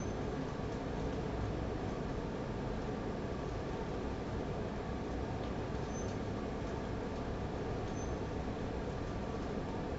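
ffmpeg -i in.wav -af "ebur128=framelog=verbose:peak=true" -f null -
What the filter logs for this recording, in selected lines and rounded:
Integrated loudness:
  I:         -40.0 LUFS
  Threshold: -50.0 LUFS
Loudness range:
  LRA:         0.5 LU
  Threshold: -60.1 LUFS
  LRA low:   -40.2 LUFS
  LRA high:  -39.8 LUFS
True peak:
  Peak:      -25.7 dBFS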